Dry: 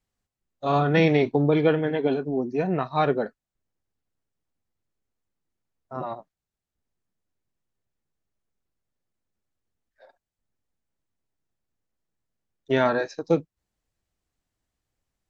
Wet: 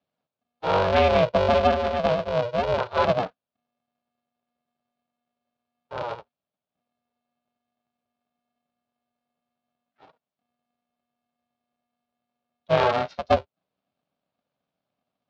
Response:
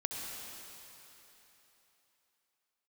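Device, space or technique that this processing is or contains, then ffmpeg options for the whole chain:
ring modulator pedal into a guitar cabinet: -af "aeval=exprs='val(0)*sgn(sin(2*PI*240*n/s))':channel_layout=same,highpass=94,equalizer=frequency=230:width_type=q:width=4:gain=-6,equalizer=frequency=330:width_type=q:width=4:gain=-10,equalizer=frequency=600:width_type=q:width=4:gain=9,equalizer=frequency=1900:width_type=q:width=4:gain=-7,lowpass=frequency=4200:width=0.5412,lowpass=frequency=4200:width=1.3066"

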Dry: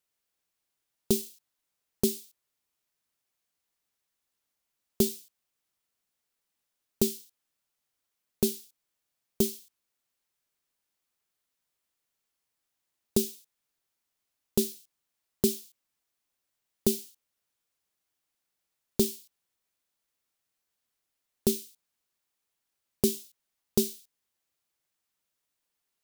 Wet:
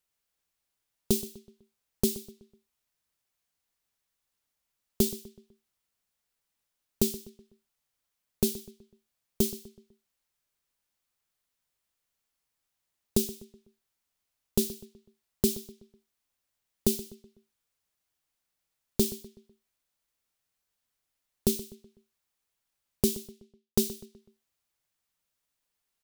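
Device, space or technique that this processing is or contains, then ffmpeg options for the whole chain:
low shelf boost with a cut just above: -filter_complex "[0:a]asettb=1/sr,asplit=3[link_01][link_02][link_03];[link_01]atrim=end=23.074[link_04];[link_02]atrim=start=23.07:end=23.95,asetpts=PTS-STARTPTS,afade=type=in:duration=0.004:curve=qsin,afade=type=out:start_time=0.876:duration=0.004:curve=qsin,agate=range=-33dB:threshold=-47dB:ratio=3:detection=peak[link_05];[link_03]atrim=start=23.946[link_06];[link_04][link_05]acrossfade=duration=0.004:curve1=hsin:curve2=qsin[link_07];[link_07][link_06]acrossfade=duration=0.004:curve1=qsin:curve2=hsin,lowshelf=frequency=82:gain=7.5,equalizer=frequency=330:width_type=o:width=0.9:gain=-2.5,asplit=2[link_08][link_09];[link_09]adelay=125,lowpass=frequency=3900:poles=1,volume=-16dB,asplit=2[link_10][link_11];[link_11]adelay=125,lowpass=frequency=3900:poles=1,volume=0.44,asplit=2[link_12][link_13];[link_13]adelay=125,lowpass=frequency=3900:poles=1,volume=0.44,asplit=2[link_14][link_15];[link_15]adelay=125,lowpass=frequency=3900:poles=1,volume=0.44[link_16];[link_08][link_10][link_12][link_14][link_16]amix=inputs=5:normalize=0"

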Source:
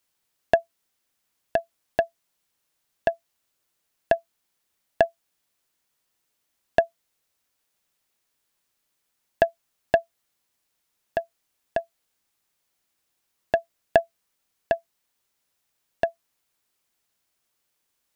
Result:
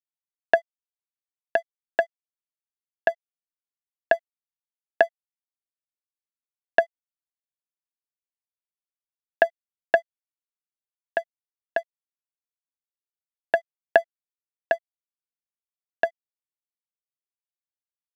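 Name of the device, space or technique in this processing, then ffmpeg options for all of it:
pocket radio on a weak battery: -af "highpass=360,lowpass=4000,aeval=exprs='sgn(val(0))*max(abs(val(0))-0.00355,0)':channel_layout=same,equalizer=frequency=1600:width_type=o:width=0.77:gain=7.5"

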